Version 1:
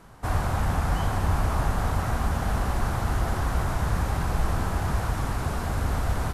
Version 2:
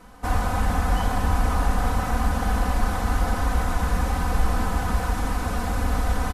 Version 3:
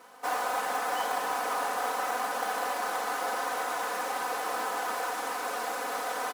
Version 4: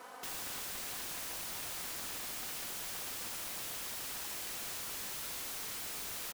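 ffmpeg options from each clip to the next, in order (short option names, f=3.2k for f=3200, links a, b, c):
-af "aecho=1:1:4:0.97"
-af "aeval=exprs='val(0)+0.0126*(sin(2*PI*50*n/s)+sin(2*PI*2*50*n/s)/2+sin(2*PI*3*50*n/s)/3+sin(2*PI*4*50*n/s)/4+sin(2*PI*5*50*n/s)/5)':c=same,highpass=f=400:w=0.5412,highpass=f=400:w=1.3066,acrusher=bits=4:mode=log:mix=0:aa=0.000001,volume=-1.5dB"
-filter_complex "[0:a]acrossover=split=350[a][b];[b]asoftclip=type=hard:threshold=-26.5dB[c];[a][c]amix=inputs=2:normalize=0,aecho=1:1:68|136|204:0.0668|0.0307|0.0141,aeval=exprs='(mod(94.4*val(0)+1,2)-1)/94.4':c=same,volume=2.5dB"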